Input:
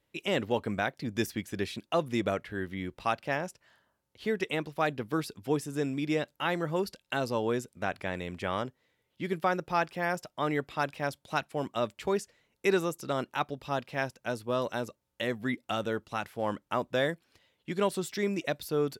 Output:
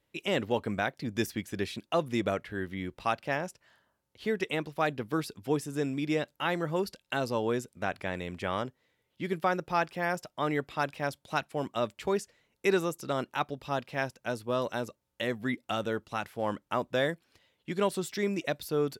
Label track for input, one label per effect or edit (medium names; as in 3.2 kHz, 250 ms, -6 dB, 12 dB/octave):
no events